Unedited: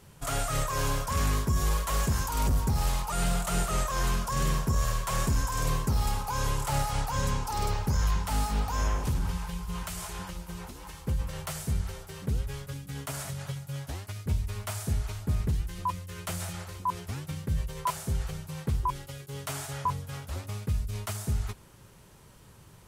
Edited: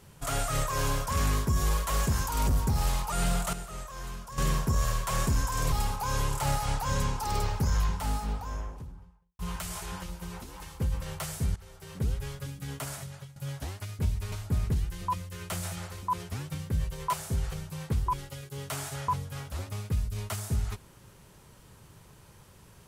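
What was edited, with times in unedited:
0:03.53–0:04.38: clip gain −11.5 dB
0:05.72–0:05.99: remove
0:07.85–0:09.66: fade out and dull
0:11.83–0:12.31: fade in, from −17.5 dB
0:13.05–0:13.63: fade out, to −15.5 dB
0:14.59–0:15.09: remove

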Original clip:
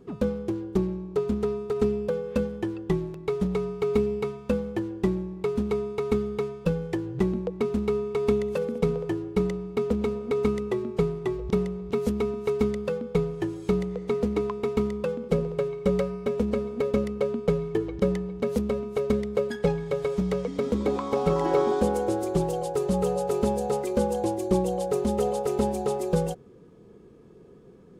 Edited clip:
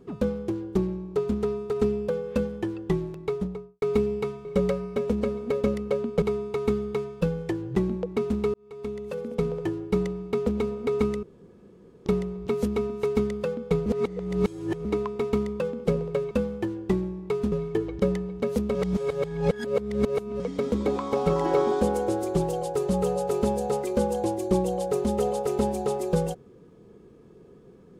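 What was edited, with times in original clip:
0:03.19–0:03.82: fade out and dull
0:04.45–0:05.66: swap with 0:15.75–0:17.52
0:07.98–0:09.09: fade in linear
0:10.67–0:11.50: fill with room tone
0:13.30–0:14.29: reverse
0:18.75–0:20.40: reverse

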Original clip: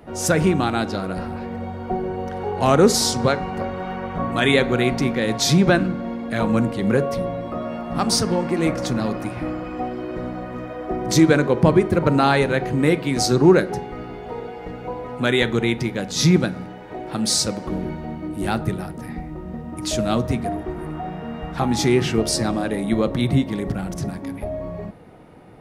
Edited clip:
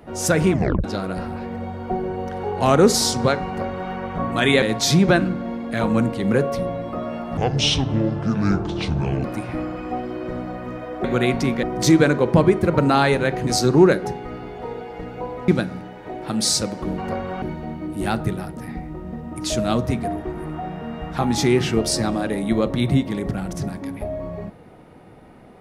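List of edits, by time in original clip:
0:00.51: tape stop 0.33 s
0:03.47–0:03.91: duplicate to 0:17.83
0:04.62–0:05.21: move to 0:10.92
0:07.96–0:09.12: play speed 62%
0:12.76–0:13.14: remove
0:15.15–0:16.33: remove

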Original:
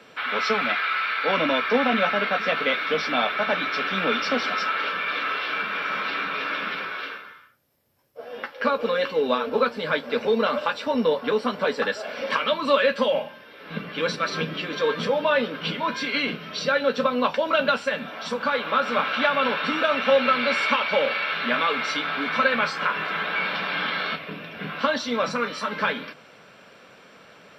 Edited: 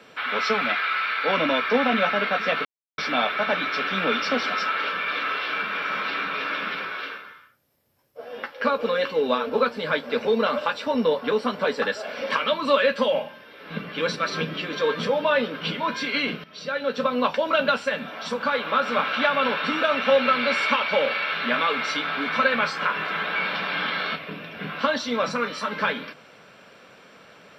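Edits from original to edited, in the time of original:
0:02.65–0:02.98: silence
0:16.44–0:17.17: fade in, from −15 dB

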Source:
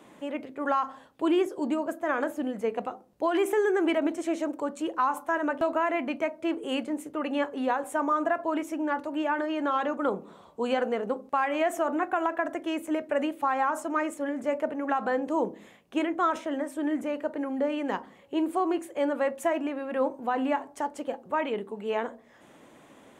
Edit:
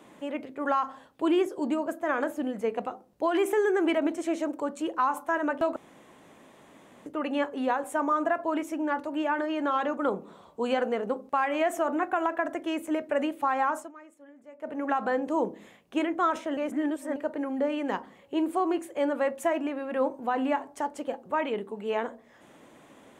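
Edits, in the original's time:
0:05.76–0:07.06: fill with room tone
0:13.72–0:14.78: duck −21 dB, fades 0.20 s
0:16.57–0:17.16: reverse

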